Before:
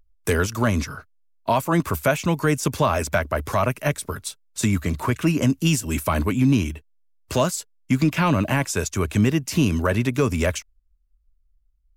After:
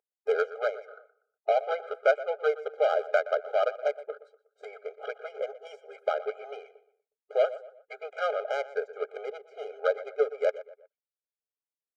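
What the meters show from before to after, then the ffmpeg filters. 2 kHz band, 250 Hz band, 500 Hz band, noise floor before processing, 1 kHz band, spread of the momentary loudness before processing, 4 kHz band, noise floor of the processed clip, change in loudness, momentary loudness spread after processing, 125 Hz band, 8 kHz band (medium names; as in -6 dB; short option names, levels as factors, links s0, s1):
-8.5 dB, under -35 dB, -1.5 dB, -63 dBFS, -7.5 dB, 9 LU, -14.5 dB, under -85 dBFS, -7.5 dB, 16 LU, under -40 dB, under -30 dB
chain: -filter_complex "[0:a]highshelf=f=3100:g=-5,adynamicsmooth=sensitivity=0.5:basefreq=590,asplit=2[s0][s1];[s1]adelay=121,lowpass=f=2700:p=1,volume=0.168,asplit=2[s2][s3];[s3]adelay=121,lowpass=f=2700:p=1,volume=0.39,asplit=2[s4][s5];[s5]adelay=121,lowpass=f=2700:p=1,volume=0.39[s6];[s2][s4][s6]amix=inputs=3:normalize=0[s7];[s0][s7]amix=inputs=2:normalize=0,afftfilt=real='re*eq(mod(floor(b*sr/1024/410),2),1)':imag='im*eq(mod(floor(b*sr/1024/410),2),1)':win_size=1024:overlap=0.75"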